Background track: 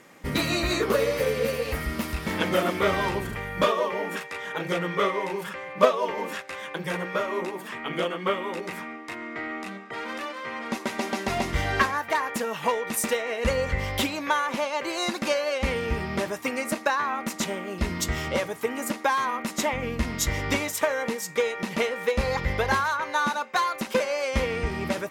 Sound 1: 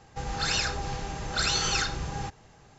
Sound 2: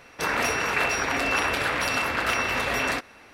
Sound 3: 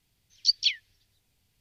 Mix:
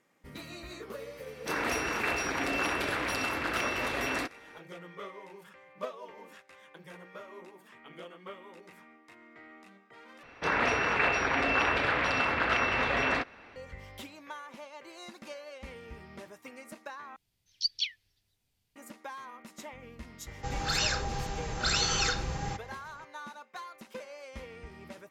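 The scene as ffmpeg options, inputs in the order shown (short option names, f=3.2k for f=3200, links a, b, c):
-filter_complex "[2:a]asplit=2[a][b];[0:a]volume=-19dB[c];[a]equalizer=f=320:t=o:w=0.5:g=7.5[d];[b]lowpass=3.4k[e];[c]asplit=3[f][g][h];[f]atrim=end=10.234[i];[e]atrim=end=3.33,asetpts=PTS-STARTPTS,volume=-2dB[j];[g]atrim=start=13.556:end=17.164[k];[3:a]atrim=end=1.6,asetpts=PTS-STARTPTS,volume=-7dB[l];[h]atrim=start=18.756[m];[d]atrim=end=3.33,asetpts=PTS-STARTPTS,volume=-7dB,afade=t=in:d=0.004:c=hsin,afade=t=out:st=3.326:d=0.004:c=hsin,adelay=1270[n];[1:a]atrim=end=2.78,asetpts=PTS-STARTPTS,volume=-1.5dB,afade=t=in:d=0.004:c=hsin,afade=t=out:st=2.776:d=0.004:c=hsin,adelay=20270[o];[i][j]acrossfade=d=0.004:c1=hsin:c2=hsin[p];[p][k]acrossfade=d=0.004:c1=hsin:c2=hsin[q];[q][l]acrossfade=d=0.004:c1=hsin:c2=hsin[r];[r][m]acrossfade=d=0.004:c1=hsin:c2=hsin[s];[s][n][o]amix=inputs=3:normalize=0"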